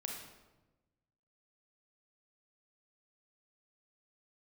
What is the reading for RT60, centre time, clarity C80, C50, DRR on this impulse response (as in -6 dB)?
1.1 s, 49 ms, 5.5 dB, 2.5 dB, 0.0 dB